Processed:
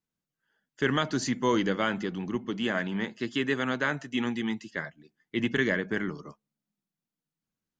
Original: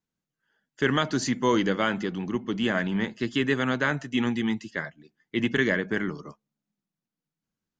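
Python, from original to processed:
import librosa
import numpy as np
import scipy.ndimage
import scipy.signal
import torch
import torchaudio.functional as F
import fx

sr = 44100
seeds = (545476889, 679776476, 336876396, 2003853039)

y = fx.low_shelf(x, sr, hz=94.0, db=-11.5, at=(2.5, 4.74))
y = F.gain(torch.from_numpy(y), -2.5).numpy()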